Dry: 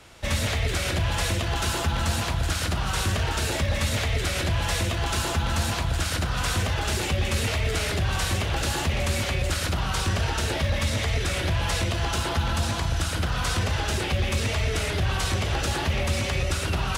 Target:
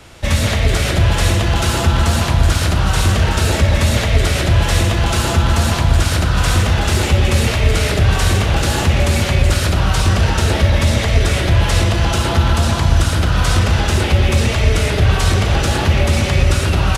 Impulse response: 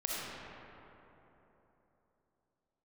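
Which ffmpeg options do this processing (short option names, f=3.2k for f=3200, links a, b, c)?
-filter_complex "[0:a]lowshelf=f=370:g=4.5,asplit=2[a][b];[1:a]atrim=start_sample=2205[c];[b][c]afir=irnorm=-1:irlink=0,volume=-6.5dB[d];[a][d]amix=inputs=2:normalize=0,aresample=32000,aresample=44100,volume=4dB"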